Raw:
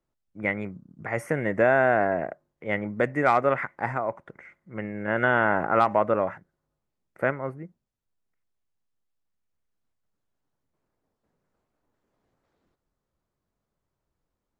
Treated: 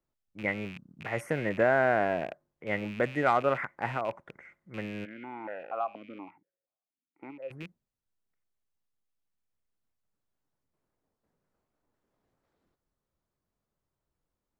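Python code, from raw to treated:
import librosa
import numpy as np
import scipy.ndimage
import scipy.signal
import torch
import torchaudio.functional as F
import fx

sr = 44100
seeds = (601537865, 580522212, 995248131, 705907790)

y = fx.rattle_buzz(x, sr, strikes_db=-41.0, level_db=-29.0)
y = fx.vowel_held(y, sr, hz=4.2, at=(5.04, 7.5), fade=0.02)
y = F.gain(torch.from_numpy(y), -4.0).numpy()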